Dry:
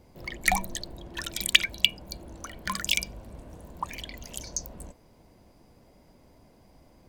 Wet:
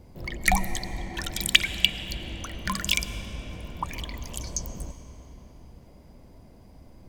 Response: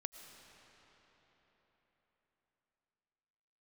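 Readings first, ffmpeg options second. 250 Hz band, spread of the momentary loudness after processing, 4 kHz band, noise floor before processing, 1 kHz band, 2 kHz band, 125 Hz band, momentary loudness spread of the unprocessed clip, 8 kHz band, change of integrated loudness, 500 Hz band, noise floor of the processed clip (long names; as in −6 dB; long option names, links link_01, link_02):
+5.5 dB, 18 LU, +1.0 dB, −59 dBFS, +1.5 dB, +1.5 dB, +8.0 dB, 23 LU, +1.0 dB, +0.5 dB, +2.5 dB, −51 dBFS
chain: -filter_complex "[0:a]asplit=2[link_01][link_02];[1:a]atrim=start_sample=2205,lowshelf=frequency=300:gain=12[link_03];[link_02][link_03]afir=irnorm=-1:irlink=0,volume=3.5dB[link_04];[link_01][link_04]amix=inputs=2:normalize=0,volume=-5dB"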